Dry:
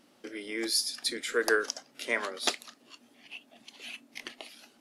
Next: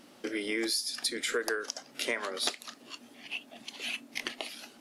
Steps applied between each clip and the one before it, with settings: compressor 12:1, threshold -35 dBFS, peak gain reduction 15.5 dB; gain +7 dB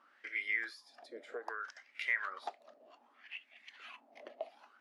wah 0.64 Hz 590–2200 Hz, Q 7.1; gain +5 dB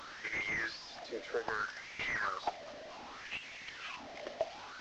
delta modulation 32 kbps, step -49.5 dBFS; gain +7 dB

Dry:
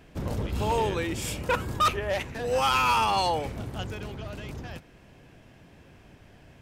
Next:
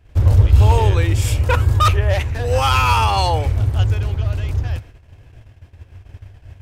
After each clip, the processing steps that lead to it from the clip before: gate -51 dBFS, range -15 dB; resonant low shelf 130 Hz +10.5 dB, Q 3; gain +6.5 dB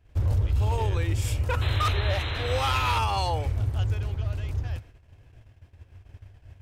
limiter -8 dBFS, peak gain reduction 6.5 dB; painted sound noise, 1.61–2.99, 260–4200 Hz -26 dBFS; gain -9 dB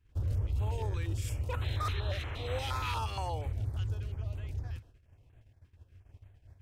stepped notch 8.5 Hz 650–5200 Hz; gain -8 dB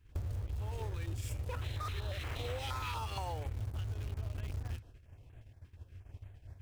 in parallel at -10 dB: requantised 6-bit, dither none; on the sum: compressor 12:1, threshold -40 dBFS, peak gain reduction 15 dB; gain +5 dB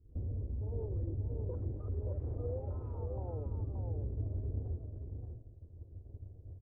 overloaded stage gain 35 dB; ladder low-pass 550 Hz, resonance 35%; echo 0.577 s -5 dB; gain +8.5 dB

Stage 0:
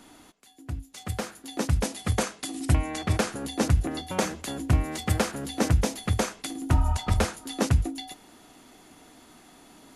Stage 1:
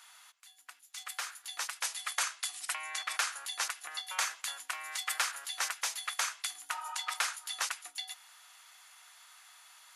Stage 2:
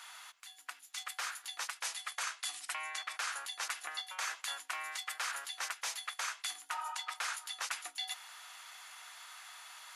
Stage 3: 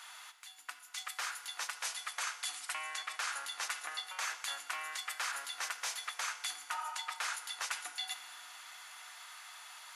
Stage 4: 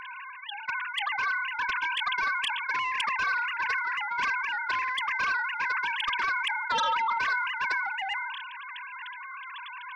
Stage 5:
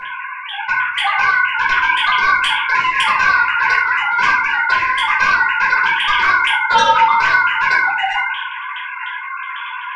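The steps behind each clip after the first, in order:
HPF 1100 Hz 24 dB/oct
high shelf 5300 Hz -6 dB; reverse; compressor 6:1, threshold -44 dBFS, peak gain reduction 16 dB; reverse; gain +7.5 dB
FDN reverb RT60 2.8 s, low-frequency decay 1.4×, high-frequency decay 0.7×, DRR 9.5 dB
sine-wave speech; sine folder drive 10 dB, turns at -21.5 dBFS; sustainer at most 31 dB/s; gain -1.5 dB
shoebox room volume 460 m³, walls furnished, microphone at 5.1 m; gain +6 dB

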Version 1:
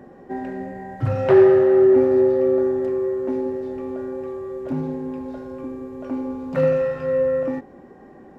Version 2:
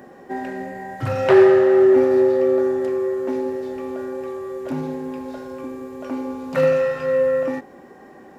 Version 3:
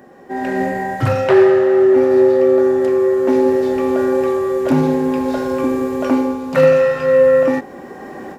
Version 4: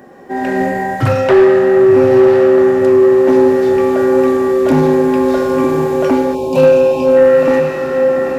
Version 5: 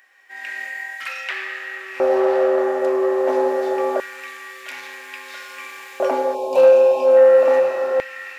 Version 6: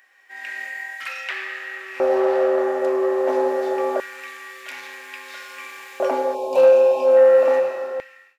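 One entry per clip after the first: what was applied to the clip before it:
tilt +2.5 dB/oct; gain +4 dB
AGC gain up to 16 dB; gain -1 dB
diffused feedback echo 1.003 s, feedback 42%, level -6 dB; spectral gain 6.35–7.17, 1100–2300 Hz -29 dB; soft clip -5 dBFS, distortion -21 dB; gain +4 dB
LFO high-pass square 0.25 Hz 610–2200 Hz; gain -7 dB
ending faded out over 0.93 s; gain -1.5 dB

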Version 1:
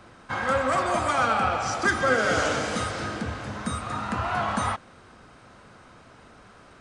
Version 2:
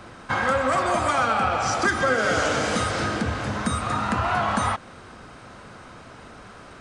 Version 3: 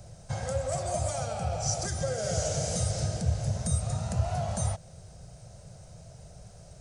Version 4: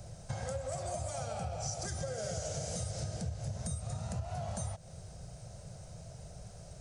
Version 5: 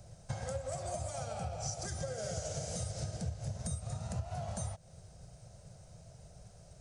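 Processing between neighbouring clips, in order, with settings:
compressor 2.5:1, threshold -28 dBFS, peak gain reduction 7.5 dB; gain +7 dB
EQ curve 160 Hz 0 dB, 260 Hz -26 dB, 640 Hz -6 dB, 1100 Hz -28 dB, 2200 Hz -21 dB, 3400 Hz -17 dB, 6000 Hz -1 dB; gain +2.5 dB
compressor, threshold -35 dBFS, peak gain reduction 13.5 dB
upward expander 1.5:1, over -48 dBFS; gain +1 dB

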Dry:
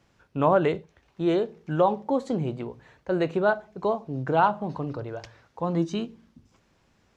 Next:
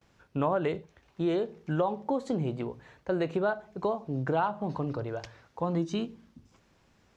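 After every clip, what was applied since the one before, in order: gate with hold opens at -58 dBFS; compressor 3:1, threshold -26 dBFS, peak gain reduction 8.5 dB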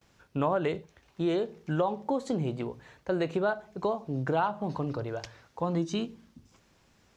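high shelf 3800 Hz +6 dB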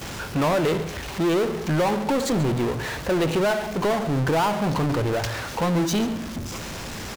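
power-law curve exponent 0.35; echo 0.138 s -15.5 dB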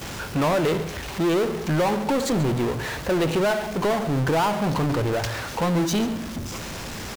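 bit-crush 8-bit

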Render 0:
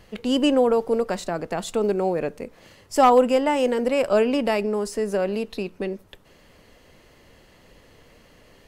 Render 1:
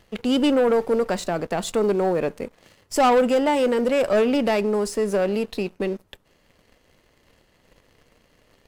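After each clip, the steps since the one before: sample leveller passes 2; gain -4.5 dB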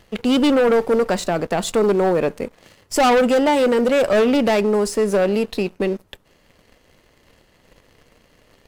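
overloaded stage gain 17 dB; gain +4.5 dB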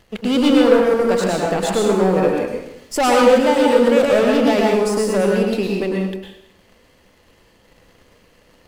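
plate-style reverb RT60 0.8 s, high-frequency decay 0.95×, pre-delay 90 ms, DRR -1.5 dB; gain -2 dB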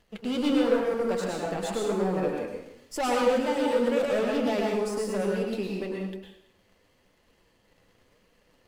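flange 0.96 Hz, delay 4 ms, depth 7.3 ms, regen -43%; gain -7.5 dB

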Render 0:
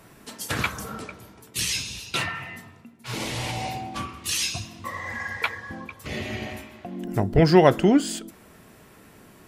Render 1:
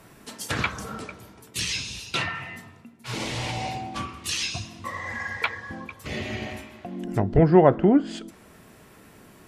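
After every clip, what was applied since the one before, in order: treble ducked by the level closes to 1300 Hz, closed at -15 dBFS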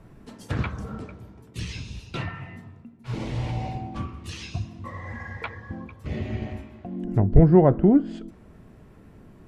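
tilt -3.5 dB/oct; gain -5.5 dB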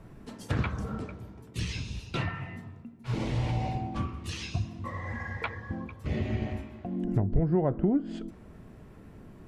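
compressor 4:1, threshold -23 dBFS, peak gain reduction 12.5 dB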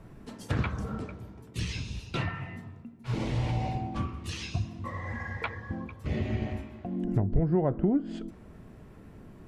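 nothing audible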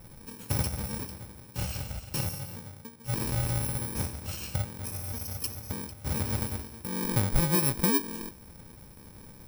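FFT order left unsorted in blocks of 64 samples

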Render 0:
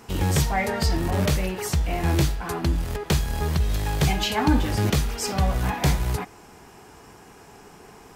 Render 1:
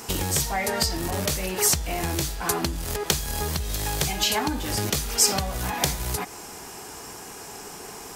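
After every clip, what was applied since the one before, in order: compressor 10:1, threshold -28 dBFS, peak gain reduction 14 dB; tone controls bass -5 dB, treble +10 dB; gain +6.5 dB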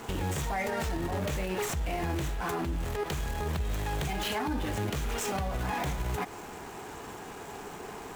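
median filter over 9 samples; limiter -23.5 dBFS, peak gain reduction 11 dB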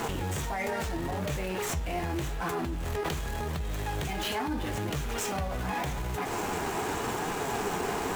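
in parallel at +2.5 dB: negative-ratio compressor -39 dBFS, ratio -0.5; on the sum: flange 0.82 Hz, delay 5.7 ms, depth 7.3 ms, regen +65%; gain +2.5 dB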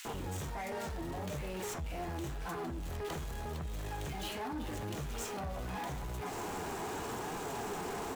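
bands offset in time highs, lows 50 ms, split 2100 Hz; soft clip -28 dBFS, distortion -16 dB; gain -5 dB

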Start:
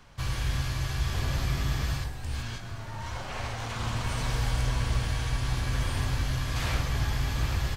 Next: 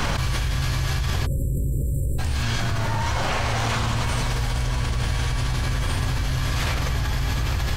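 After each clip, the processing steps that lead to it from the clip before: spectral delete 1.26–2.19, 590–7300 Hz; fast leveller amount 100%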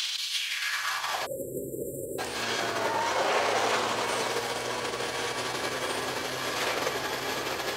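limiter -18.5 dBFS, peak gain reduction 7 dB; high-pass sweep 3500 Hz -> 420 Hz, 0.3–1.47; gain +2 dB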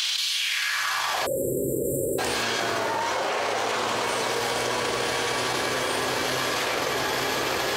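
fast leveller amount 100%; gain -2.5 dB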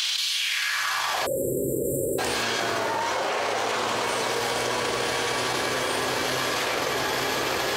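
nothing audible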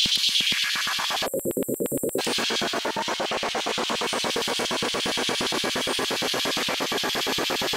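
LFO high-pass square 8.6 Hz 210–3200 Hz; wavefolder -10.5 dBFS

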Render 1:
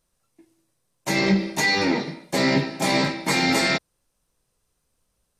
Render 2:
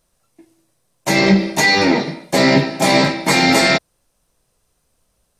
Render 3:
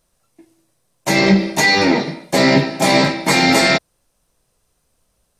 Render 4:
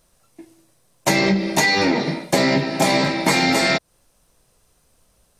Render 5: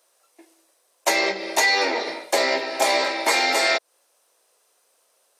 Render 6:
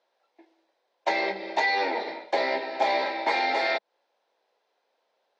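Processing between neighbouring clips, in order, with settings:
bell 660 Hz +4 dB 0.43 oct; gain +7 dB
nothing audible
compressor 12:1, threshold -19 dBFS, peak gain reduction 12.5 dB; gain +5 dB
HPF 420 Hz 24 dB/oct; gain -1 dB
speaker cabinet 180–3900 Hz, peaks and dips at 200 Hz +5 dB, 850 Hz +6 dB, 1200 Hz -7 dB, 2800 Hz -5 dB; gain -5 dB

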